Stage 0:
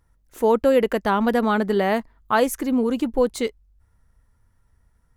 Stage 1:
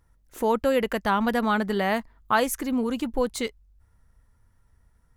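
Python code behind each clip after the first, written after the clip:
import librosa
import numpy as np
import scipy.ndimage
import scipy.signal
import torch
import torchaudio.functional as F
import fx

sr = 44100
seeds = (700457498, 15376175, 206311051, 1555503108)

y = fx.dynamic_eq(x, sr, hz=390.0, q=0.79, threshold_db=-31.0, ratio=4.0, max_db=-7)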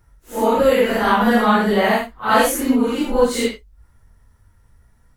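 y = fx.phase_scramble(x, sr, seeds[0], window_ms=200)
y = F.gain(torch.from_numpy(y), 8.5).numpy()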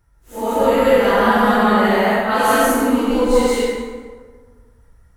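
y = fx.rev_plate(x, sr, seeds[1], rt60_s=1.6, hf_ratio=0.55, predelay_ms=115, drr_db=-5.5)
y = F.gain(torch.from_numpy(y), -5.0).numpy()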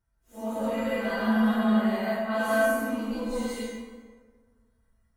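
y = fx.comb_fb(x, sr, f0_hz=220.0, decay_s=0.32, harmonics='odd', damping=0.0, mix_pct=90)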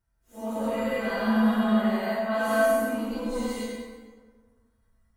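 y = fx.echo_feedback(x, sr, ms=95, feedback_pct=39, wet_db=-7.5)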